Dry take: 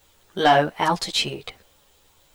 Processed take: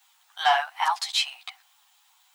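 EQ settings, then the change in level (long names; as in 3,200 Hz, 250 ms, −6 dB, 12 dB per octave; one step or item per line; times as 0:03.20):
Chebyshev high-pass filter 740 Hz, order 6
−1.5 dB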